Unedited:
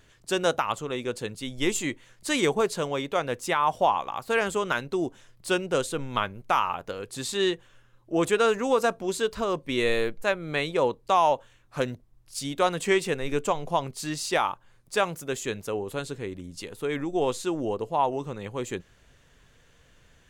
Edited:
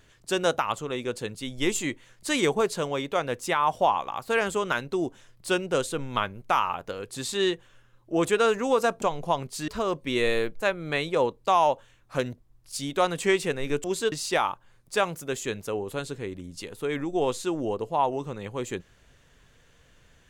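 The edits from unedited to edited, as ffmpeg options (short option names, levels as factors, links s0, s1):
-filter_complex "[0:a]asplit=5[s0][s1][s2][s3][s4];[s0]atrim=end=9.022[s5];[s1]atrim=start=13.458:end=14.122[s6];[s2]atrim=start=9.298:end=13.462[s7];[s3]atrim=start=9.018:end=9.302[s8];[s4]atrim=start=14.118[s9];[s5][s6]acrossfade=d=0.004:c1=hsin:c2=hsin[s10];[s10][s7]acrossfade=d=0.004:c1=hsin:c2=hsin[s11];[s11][s8]acrossfade=d=0.004:c1=hsin:c2=hsin[s12];[s12][s9]acrossfade=d=0.004:c1=hsin:c2=hsin"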